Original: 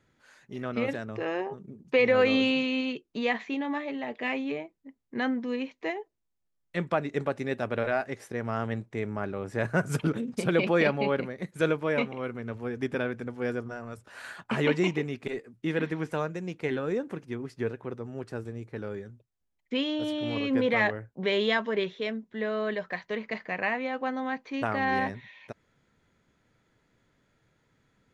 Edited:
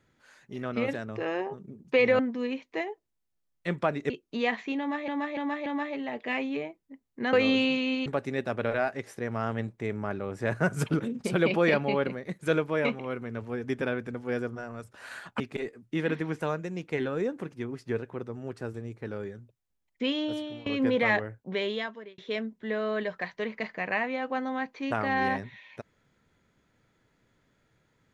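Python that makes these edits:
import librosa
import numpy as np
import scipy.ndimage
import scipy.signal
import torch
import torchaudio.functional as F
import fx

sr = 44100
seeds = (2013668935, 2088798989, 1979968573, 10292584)

y = fx.edit(x, sr, fx.swap(start_s=2.19, length_s=0.73, other_s=5.28, other_length_s=1.91),
    fx.repeat(start_s=3.61, length_s=0.29, count=4),
    fx.cut(start_s=14.53, length_s=0.58),
    fx.fade_out_to(start_s=19.96, length_s=0.41, floor_db=-20.0),
    fx.fade_out_span(start_s=21.02, length_s=0.87), tone=tone)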